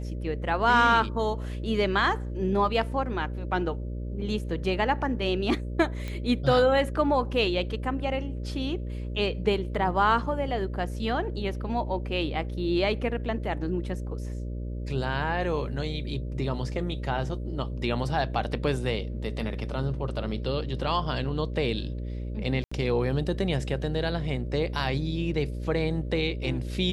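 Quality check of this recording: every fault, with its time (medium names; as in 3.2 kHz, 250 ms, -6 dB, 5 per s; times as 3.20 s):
buzz 60 Hz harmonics 10 -33 dBFS
6.08 s: pop -21 dBFS
22.64–22.71 s: dropout 75 ms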